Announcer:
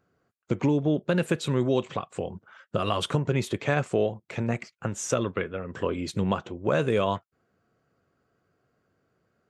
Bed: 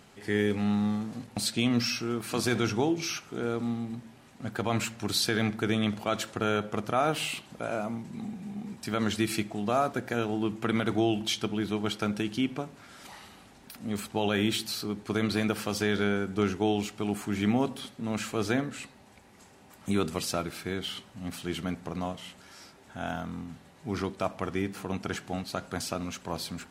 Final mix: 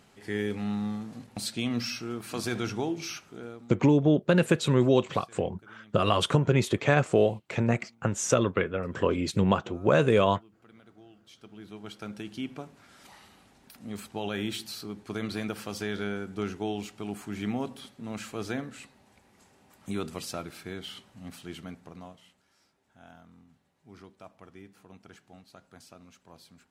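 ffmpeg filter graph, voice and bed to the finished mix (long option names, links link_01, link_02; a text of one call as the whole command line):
ffmpeg -i stem1.wav -i stem2.wav -filter_complex "[0:a]adelay=3200,volume=2.5dB[link_01];[1:a]volume=18.5dB,afade=type=out:start_time=3.11:duration=0.63:silence=0.0630957,afade=type=in:start_time=11.26:duration=1.41:silence=0.0749894,afade=type=out:start_time=21.16:duration=1.26:silence=0.223872[link_02];[link_01][link_02]amix=inputs=2:normalize=0" out.wav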